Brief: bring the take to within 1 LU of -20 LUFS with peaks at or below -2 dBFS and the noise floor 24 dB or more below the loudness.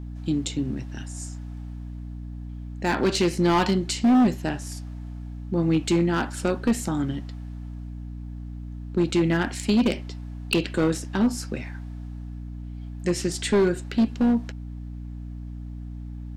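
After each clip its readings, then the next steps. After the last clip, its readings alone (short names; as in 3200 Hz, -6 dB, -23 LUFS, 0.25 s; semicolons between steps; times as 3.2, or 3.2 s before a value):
clipped 1.9%; flat tops at -15.0 dBFS; hum 60 Hz; harmonics up to 300 Hz; hum level -33 dBFS; loudness -24.5 LUFS; peak -15.0 dBFS; loudness target -20.0 LUFS
-> clip repair -15 dBFS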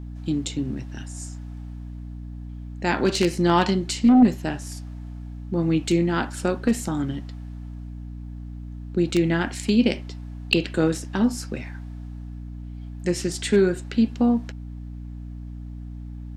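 clipped 0.0%; hum 60 Hz; harmonics up to 300 Hz; hum level -33 dBFS
-> de-hum 60 Hz, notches 5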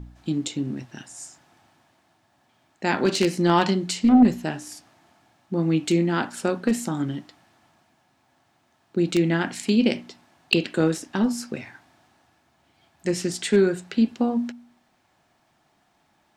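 hum none; loudness -23.5 LUFS; peak -6.0 dBFS; loudness target -20.0 LUFS
-> gain +3.5 dB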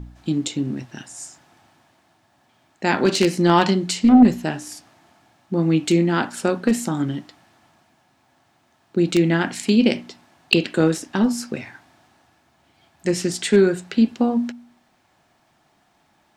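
loudness -20.0 LUFS; peak -2.5 dBFS; noise floor -63 dBFS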